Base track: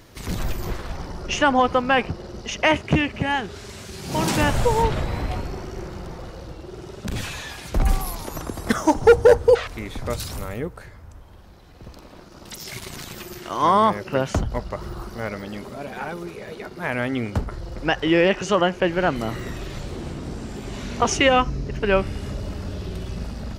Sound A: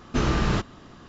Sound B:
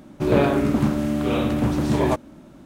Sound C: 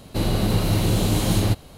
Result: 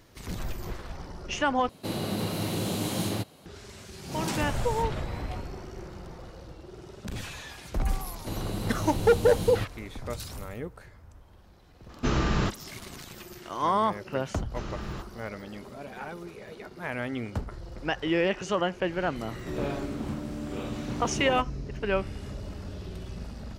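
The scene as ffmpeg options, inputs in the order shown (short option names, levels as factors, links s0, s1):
-filter_complex "[3:a]asplit=2[s0][s1];[1:a]asplit=2[s2][s3];[0:a]volume=0.398[s4];[s0]highpass=150[s5];[s4]asplit=2[s6][s7];[s6]atrim=end=1.694[s8];[s5]atrim=end=1.77,asetpts=PTS-STARTPTS,volume=0.473[s9];[s7]atrim=start=3.456[s10];[s1]atrim=end=1.77,asetpts=PTS-STARTPTS,volume=0.251,afade=t=in:d=0.004:c=hsin,afade=t=out:st=1.766:d=0.004:c=hsin,adelay=8110[s11];[s2]atrim=end=1.08,asetpts=PTS-STARTPTS,volume=0.75,afade=t=in:d=0.004:c=hsin,afade=t=out:st=1.076:d=0.004:c=hsin,adelay=11890[s12];[s3]atrim=end=1.08,asetpts=PTS-STARTPTS,volume=0.188,afade=t=in:d=0.004:c=hsin,afade=t=out:st=1.076:d=0.004:c=hsin,adelay=14410[s13];[2:a]atrim=end=2.65,asetpts=PTS-STARTPTS,volume=0.2,afade=t=in:d=0.004:c=hsin,afade=t=out:st=2.646:d=0.004:c=hsin,adelay=19260[s14];[s8][s9]acrossfade=d=0.004:c1=hsin:c2=hsin[s15];[s15][s10]acrossfade=d=0.004:c1=hsin:c2=hsin[s16];[s16][s11][s12][s13][s14]amix=inputs=5:normalize=0"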